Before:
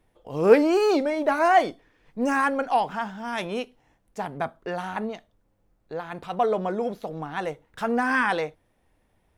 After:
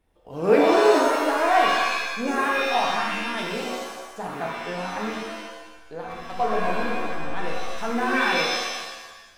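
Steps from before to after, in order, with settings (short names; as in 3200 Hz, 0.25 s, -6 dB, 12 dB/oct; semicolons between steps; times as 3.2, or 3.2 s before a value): 6.06–7.25 backlash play -26 dBFS; shimmer reverb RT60 1.1 s, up +7 st, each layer -2 dB, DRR -1.5 dB; gain -4.5 dB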